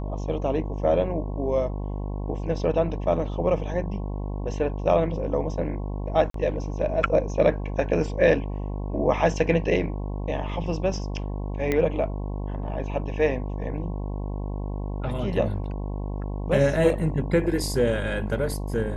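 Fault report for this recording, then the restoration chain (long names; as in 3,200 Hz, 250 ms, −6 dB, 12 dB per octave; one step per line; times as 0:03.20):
mains buzz 50 Hz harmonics 22 −30 dBFS
0:06.30–0:06.34: drop-out 43 ms
0:11.72: click −12 dBFS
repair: click removal
hum removal 50 Hz, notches 22
repair the gap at 0:06.30, 43 ms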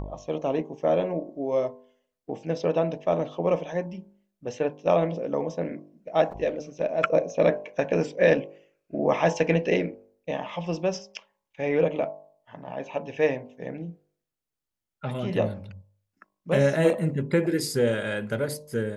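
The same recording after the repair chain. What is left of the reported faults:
0:11.72: click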